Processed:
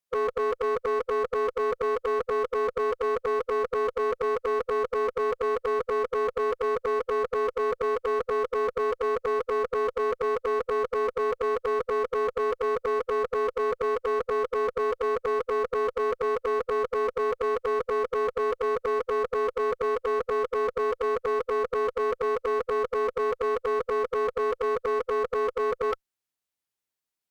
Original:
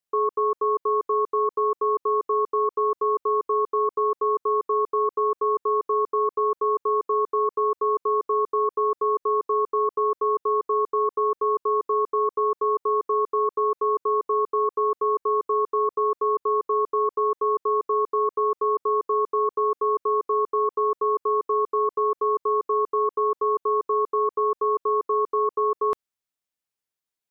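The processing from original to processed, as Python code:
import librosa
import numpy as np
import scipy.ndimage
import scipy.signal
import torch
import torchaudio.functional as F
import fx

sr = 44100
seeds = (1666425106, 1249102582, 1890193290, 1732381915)

y = fx.formant_shift(x, sr, semitones=3)
y = fx.clip_asym(y, sr, top_db=-25.0, bottom_db=-19.0)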